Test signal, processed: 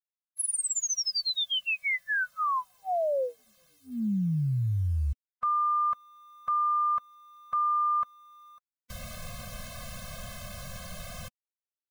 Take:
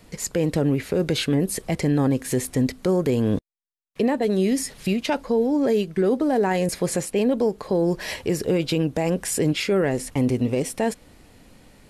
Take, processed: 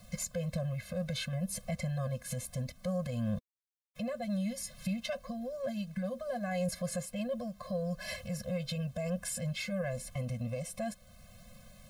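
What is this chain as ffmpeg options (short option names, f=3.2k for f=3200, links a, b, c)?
-af "acrusher=bits=8:mix=0:aa=0.000001,alimiter=limit=-20.5dB:level=0:latency=1:release=445,afftfilt=real='re*eq(mod(floor(b*sr/1024/250),2),0)':imag='im*eq(mod(floor(b*sr/1024/250),2),0)':win_size=1024:overlap=0.75,volume=-2.5dB"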